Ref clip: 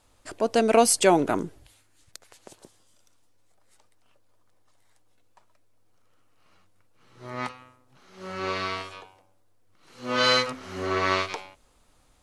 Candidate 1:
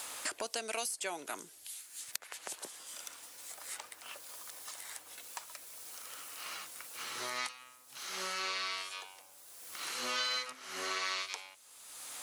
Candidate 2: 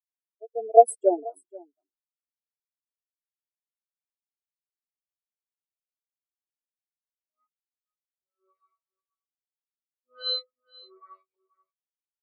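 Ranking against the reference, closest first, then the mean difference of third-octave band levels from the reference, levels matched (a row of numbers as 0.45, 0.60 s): 1, 2; 12.0, 23.0 dB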